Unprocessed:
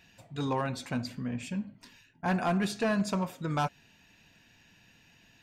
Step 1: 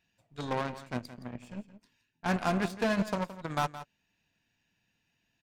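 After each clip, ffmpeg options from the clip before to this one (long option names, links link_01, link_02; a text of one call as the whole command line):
ffmpeg -i in.wav -af "aeval=exprs='0.0794*(cos(1*acos(clip(val(0)/0.0794,-1,1)))-cos(1*PI/2))+0.0224*(cos(3*acos(clip(val(0)/0.0794,-1,1)))-cos(3*PI/2))+0.002*(cos(6*acos(clip(val(0)/0.0794,-1,1)))-cos(6*PI/2))':channel_layout=same,aecho=1:1:169:0.2" out.wav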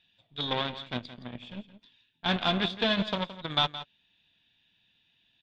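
ffmpeg -i in.wav -af "lowpass=frequency=3500:width_type=q:width=13" out.wav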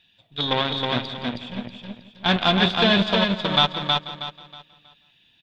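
ffmpeg -i in.wav -af "aecho=1:1:319|638|957|1276:0.668|0.194|0.0562|0.0163,volume=7.5dB" out.wav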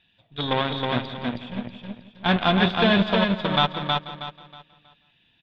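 ffmpeg -i in.wav -af "bass=frequency=250:gain=1,treble=frequency=4000:gain=-14" out.wav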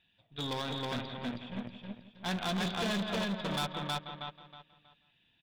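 ffmpeg -i in.wav -af "volume=22.5dB,asoftclip=hard,volume=-22.5dB,volume=-7.5dB" out.wav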